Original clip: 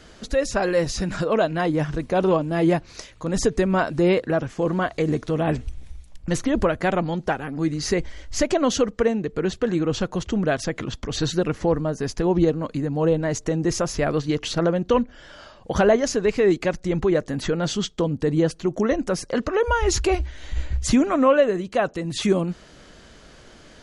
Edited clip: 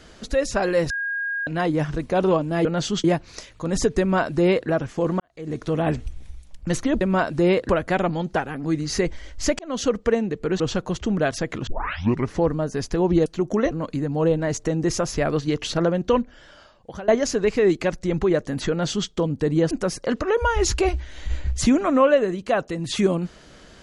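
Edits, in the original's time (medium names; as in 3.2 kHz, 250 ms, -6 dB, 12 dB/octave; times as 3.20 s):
0.90–1.47 s: bleep 1.63 kHz -23.5 dBFS
3.61–4.29 s: copy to 6.62 s
4.81–5.26 s: fade in quadratic
8.52–8.85 s: fade in
9.53–9.86 s: delete
10.93 s: tape start 0.66 s
14.90–15.89 s: fade out, to -20.5 dB
17.51–17.90 s: copy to 2.65 s
18.52–18.97 s: move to 12.52 s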